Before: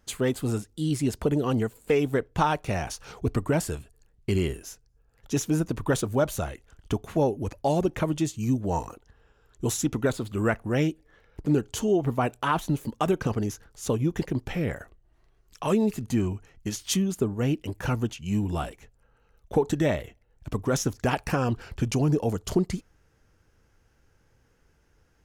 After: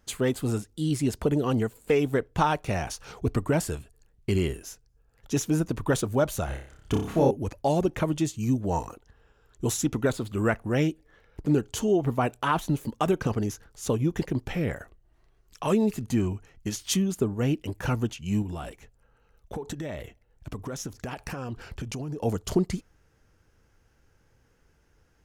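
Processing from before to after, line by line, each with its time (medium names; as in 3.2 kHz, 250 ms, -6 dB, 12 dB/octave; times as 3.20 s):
6.45–7.31 s: flutter echo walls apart 5.1 m, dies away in 0.49 s
18.42–22.22 s: compression, threshold -31 dBFS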